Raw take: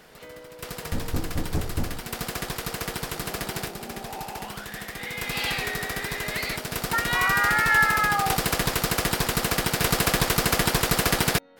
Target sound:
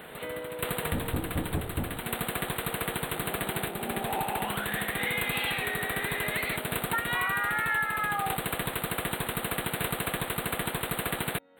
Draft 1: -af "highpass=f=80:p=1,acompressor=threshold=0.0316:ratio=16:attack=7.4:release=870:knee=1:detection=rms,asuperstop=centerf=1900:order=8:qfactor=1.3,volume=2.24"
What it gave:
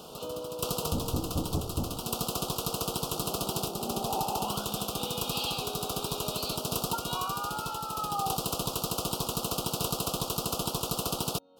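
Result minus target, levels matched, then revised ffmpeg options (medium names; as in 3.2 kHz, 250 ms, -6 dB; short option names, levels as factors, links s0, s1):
2 kHz band -15.5 dB
-af "highpass=f=80:p=1,acompressor=threshold=0.0316:ratio=16:attack=7.4:release=870:knee=1:detection=rms,asuperstop=centerf=5700:order=8:qfactor=1.3,volume=2.24"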